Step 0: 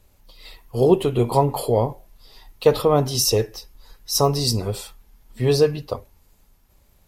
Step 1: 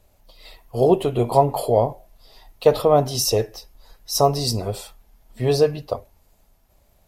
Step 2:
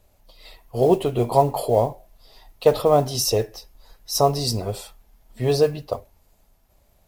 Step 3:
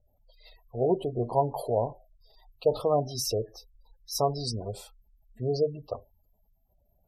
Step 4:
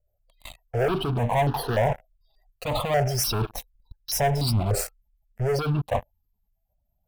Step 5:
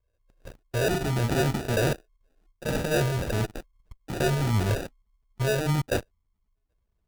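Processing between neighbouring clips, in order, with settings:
bell 660 Hz +9.5 dB 0.48 oct; gain -2 dB
modulation noise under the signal 31 dB; gain -1 dB
spectral gate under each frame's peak -20 dB strong; gain -8 dB
sample leveller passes 5; reverse; compressor 6:1, threshold -24 dBFS, peak gain reduction 10.5 dB; reverse; step phaser 3.4 Hz 940–2200 Hz; gain +5 dB
high shelf 8000 Hz -11 dB; sample-and-hold 41×; one-sided clip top -22 dBFS, bottom -17 dBFS

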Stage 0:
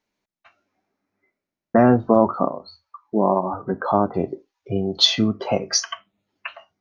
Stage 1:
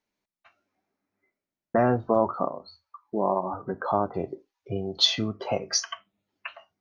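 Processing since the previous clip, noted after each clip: dynamic EQ 230 Hz, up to -6 dB, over -29 dBFS, Q 1.3; gain -5 dB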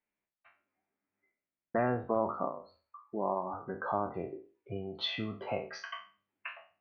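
spectral trails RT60 0.37 s; ladder low-pass 2900 Hz, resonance 35%; gain -1.5 dB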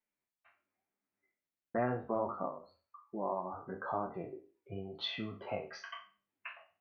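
flange 0.97 Hz, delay 4.3 ms, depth 8.9 ms, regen -38%

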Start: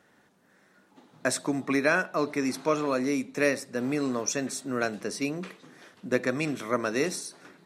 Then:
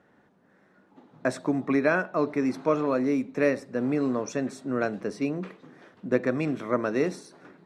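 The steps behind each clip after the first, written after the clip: LPF 1100 Hz 6 dB/oct; gain +3 dB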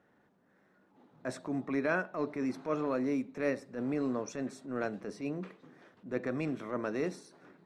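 transient shaper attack -8 dB, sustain -1 dB; gain -6 dB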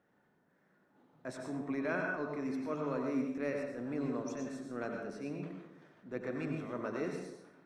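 plate-style reverb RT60 0.8 s, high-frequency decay 0.6×, pre-delay 80 ms, DRR 1.5 dB; gain -5.5 dB

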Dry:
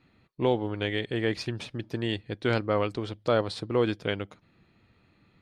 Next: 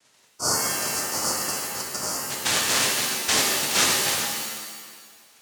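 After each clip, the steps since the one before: noise vocoder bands 1; spectral gain 0.36–2.3, 1500–4400 Hz -28 dB; shimmer reverb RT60 1.4 s, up +7 st, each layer -2 dB, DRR 0 dB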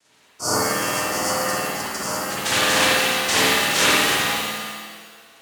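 spring tank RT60 1.1 s, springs 52 ms, chirp 25 ms, DRR -7.5 dB; gain -1 dB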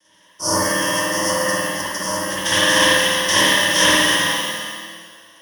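ripple EQ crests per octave 1.2, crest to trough 15 dB

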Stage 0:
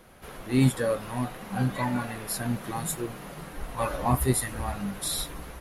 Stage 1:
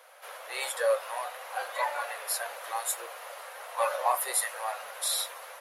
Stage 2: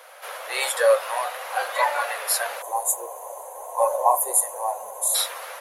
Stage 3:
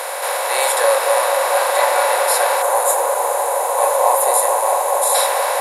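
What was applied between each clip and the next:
elliptic high-pass 530 Hz, stop band 50 dB; gain +2 dB
spectral gain 2.62–5.15, 1100–6000 Hz -22 dB; gain +8.5 dB
per-bin compression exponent 0.4; band-limited delay 0.221 s, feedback 82%, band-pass 660 Hz, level -5 dB; gain -1 dB

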